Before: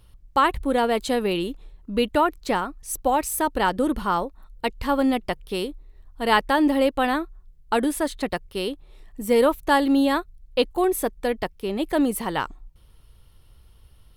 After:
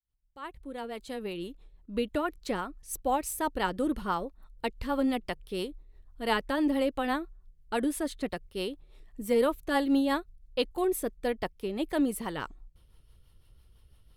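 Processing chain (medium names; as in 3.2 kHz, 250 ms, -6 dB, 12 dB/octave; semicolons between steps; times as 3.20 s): fade-in on the opening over 2.55 s; rotary cabinet horn 6 Hz; trim -5 dB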